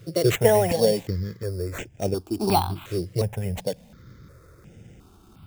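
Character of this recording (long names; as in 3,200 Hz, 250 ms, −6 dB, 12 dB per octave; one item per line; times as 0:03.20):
aliases and images of a low sample rate 5,000 Hz, jitter 0%
notches that jump at a steady rate 2.8 Hz 230–4,200 Hz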